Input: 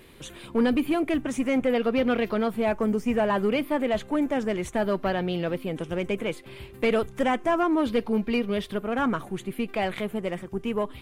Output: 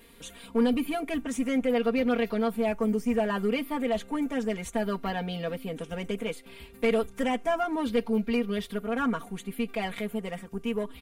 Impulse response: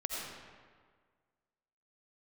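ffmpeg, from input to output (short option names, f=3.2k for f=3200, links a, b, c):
-af "highshelf=f=5.1k:g=6.5,aecho=1:1:4.3:0.87,volume=-6.5dB"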